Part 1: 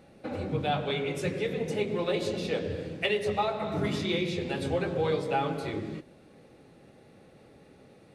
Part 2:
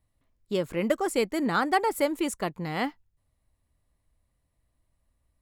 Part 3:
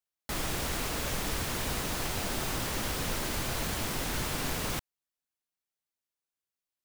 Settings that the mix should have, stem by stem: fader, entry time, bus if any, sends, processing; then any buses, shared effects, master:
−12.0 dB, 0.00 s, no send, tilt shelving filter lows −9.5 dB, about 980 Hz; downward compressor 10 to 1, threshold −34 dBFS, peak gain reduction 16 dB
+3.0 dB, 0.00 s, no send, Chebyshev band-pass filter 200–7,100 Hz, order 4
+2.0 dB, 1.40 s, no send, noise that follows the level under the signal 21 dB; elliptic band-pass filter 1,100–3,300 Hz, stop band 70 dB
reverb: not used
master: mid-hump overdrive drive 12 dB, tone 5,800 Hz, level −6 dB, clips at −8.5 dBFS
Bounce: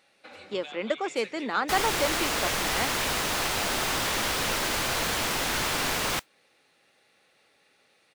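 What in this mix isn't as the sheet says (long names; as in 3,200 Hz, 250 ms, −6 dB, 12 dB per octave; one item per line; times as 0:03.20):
stem 2 +3.0 dB → −6.0 dB
stem 3: missing elliptic band-pass filter 1,100–3,300 Hz, stop band 70 dB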